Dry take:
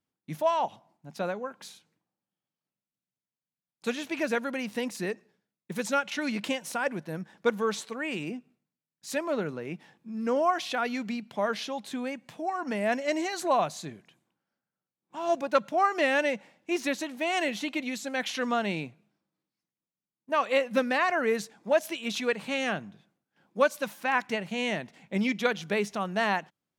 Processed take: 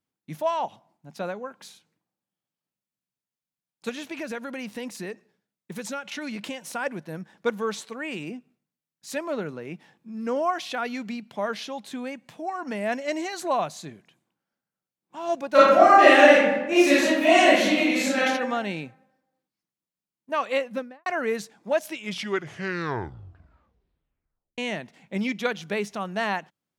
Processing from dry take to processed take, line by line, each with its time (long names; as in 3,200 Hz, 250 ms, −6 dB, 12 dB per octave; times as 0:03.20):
0:03.89–0:06.62: downward compressor 3 to 1, threshold −30 dBFS
0:15.49–0:18.19: thrown reverb, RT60 1.1 s, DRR −11 dB
0:20.55–0:21.06: fade out and dull
0:21.81: tape stop 2.77 s